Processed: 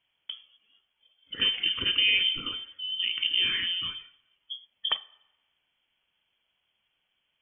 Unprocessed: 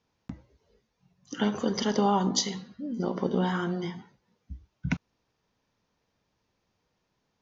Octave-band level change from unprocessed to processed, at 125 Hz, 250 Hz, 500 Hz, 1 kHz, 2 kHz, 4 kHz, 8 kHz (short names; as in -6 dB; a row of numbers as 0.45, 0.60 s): -18.5 dB, -21.0 dB, -19.5 dB, -15.0 dB, +9.5 dB, +14.0 dB, n/a